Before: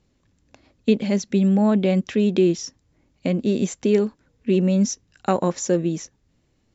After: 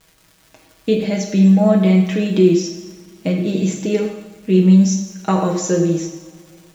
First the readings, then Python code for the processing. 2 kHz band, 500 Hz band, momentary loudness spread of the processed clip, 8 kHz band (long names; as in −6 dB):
+4.5 dB, +3.5 dB, 15 LU, can't be measured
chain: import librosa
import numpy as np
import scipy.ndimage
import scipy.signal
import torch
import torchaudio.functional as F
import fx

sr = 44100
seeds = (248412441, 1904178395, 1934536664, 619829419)

y = fx.dmg_crackle(x, sr, seeds[0], per_s=240.0, level_db=-39.0)
y = y + 0.72 * np.pad(y, (int(6.3 * sr / 1000.0), 0))[:len(y)]
y = fx.rev_double_slope(y, sr, seeds[1], early_s=0.88, late_s=3.2, knee_db=-21, drr_db=1.0)